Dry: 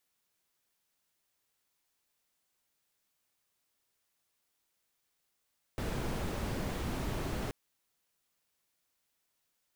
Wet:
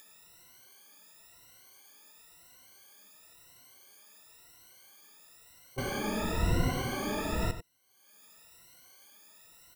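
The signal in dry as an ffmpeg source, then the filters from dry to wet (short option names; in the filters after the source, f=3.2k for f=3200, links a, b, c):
-f lavfi -i "anoisesrc=c=brown:a=0.0832:d=1.73:r=44100:seed=1"
-filter_complex "[0:a]afftfilt=real='re*pow(10,24/40*sin(2*PI*(2*log(max(b,1)*sr/1024/100)/log(2)-(0.97)*(pts-256)/sr)))':imag='im*pow(10,24/40*sin(2*PI*(2*log(max(b,1)*sr/1024/100)/log(2)-(0.97)*(pts-256)/sr)))':win_size=1024:overlap=0.75,acompressor=mode=upward:threshold=-43dB:ratio=2.5,asplit=2[a][b];[b]aecho=0:1:94:0.266[c];[a][c]amix=inputs=2:normalize=0"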